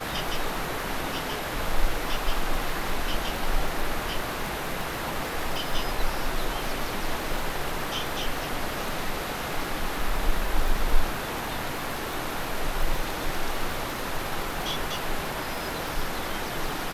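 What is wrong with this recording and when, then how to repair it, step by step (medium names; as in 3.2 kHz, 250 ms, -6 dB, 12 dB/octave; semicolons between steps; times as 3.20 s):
crackle 37 per s -29 dBFS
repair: de-click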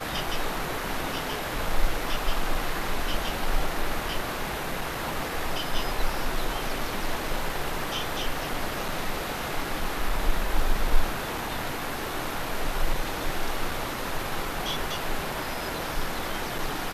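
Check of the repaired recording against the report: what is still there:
nothing left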